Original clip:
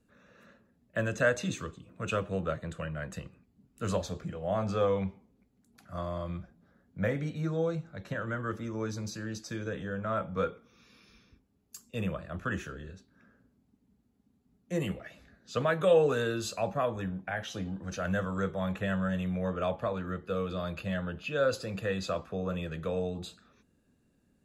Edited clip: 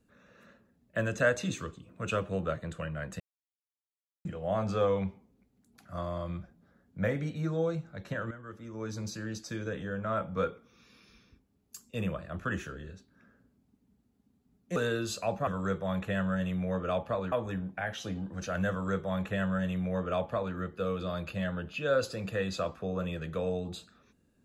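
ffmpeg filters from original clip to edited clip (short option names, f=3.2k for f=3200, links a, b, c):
-filter_complex "[0:a]asplit=7[a][b][c][d][e][f][g];[a]atrim=end=3.2,asetpts=PTS-STARTPTS,afade=t=out:st=3.196:d=0.004:c=hsin[h];[b]atrim=start=3.2:end=4.25,asetpts=PTS-STARTPTS,volume=0[i];[c]atrim=start=4.25:end=8.31,asetpts=PTS-STARTPTS,afade=t=in:d=0.004:c=hsin,afade=t=out:st=4.056:d=0.004:c=hsin:silence=0.237137[j];[d]atrim=start=8.31:end=14.762,asetpts=PTS-STARTPTS,afade=t=in:d=0.7:c=qua:silence=0.237137[k];[e]atrim=start=16.108:end=16.822[l];[f]atrim=start=18.198:end=20.052[m];[g]atrim=start=16.818[n];[h][i][j][k]concat=n=4:v=0:a=1[o];[o][l]acrossfade=d=0.004:c1=hsin:c2=hsin[p];[p][m]acrossfade=d=0.004:c1=hsin:c2=hsin[q];[q][n]acrossfade=d=0.004:c1=hsin:c2=hsin"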